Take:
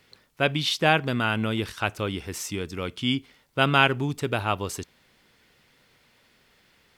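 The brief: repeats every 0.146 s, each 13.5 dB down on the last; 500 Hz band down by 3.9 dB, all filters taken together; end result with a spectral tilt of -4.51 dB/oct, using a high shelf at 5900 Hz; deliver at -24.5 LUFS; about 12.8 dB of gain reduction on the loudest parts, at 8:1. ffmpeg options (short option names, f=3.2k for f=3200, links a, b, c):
-af "equalizer=f=500:t=o:g=-5,highshelf=f=5.9k:g=-7.5,acompressor=threshold=-29dB:ratio=8,aecho=1:1:146|292:0.211|0.0444,volume=10dB"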